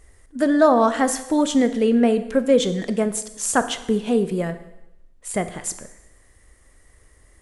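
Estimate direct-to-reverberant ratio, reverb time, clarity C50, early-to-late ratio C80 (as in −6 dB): 10.0 dB, 0.90 s, 12.5 dB, 15.0 dB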